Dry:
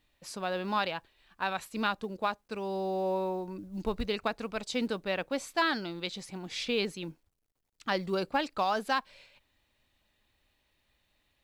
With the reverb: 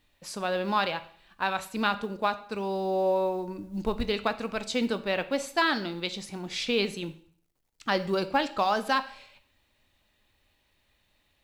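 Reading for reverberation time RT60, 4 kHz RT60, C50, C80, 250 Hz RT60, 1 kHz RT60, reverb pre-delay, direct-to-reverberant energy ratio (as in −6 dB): 0.55 s, 0.50 s, 15.0 dB, 18.5 dB, 0.60 s, 0.55 s, 6 ms, 11.0 dB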